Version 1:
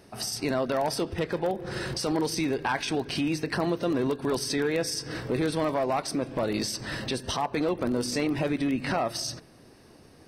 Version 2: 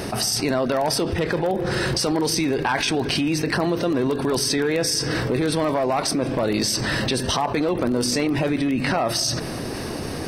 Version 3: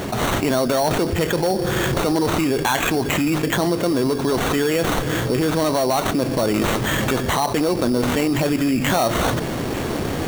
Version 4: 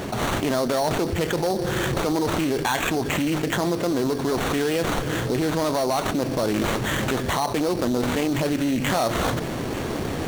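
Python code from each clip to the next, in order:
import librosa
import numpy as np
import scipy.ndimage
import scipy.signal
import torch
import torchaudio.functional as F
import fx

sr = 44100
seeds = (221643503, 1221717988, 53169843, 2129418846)

y1 = fx.env_flatten(x, sr, amount_pct=70)
y1 = y1 * 10.0 ** (4.0 / 20.0)
y2 = fx.rider(y1, sr, range_db=4, speed_s=2.0)
y2 = fx.sample_hold(y2, sr, seeds[0], rate_hz=5000.0, jitter_pct=0)
y2 = y2 * 10.0 ** (2.5 / 20.0)
y3 = fx.doppler_dist(y2, sr, depth_ms=0.26)
y3 = y3 * 10.0 ** (-3.5 / 20.0)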